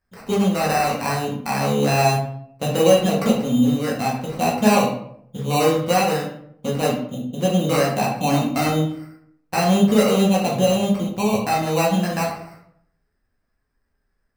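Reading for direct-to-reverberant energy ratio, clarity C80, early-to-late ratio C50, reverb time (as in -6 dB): -4.0 dB, 8.5 dB, 5.5 dB, 0.65 s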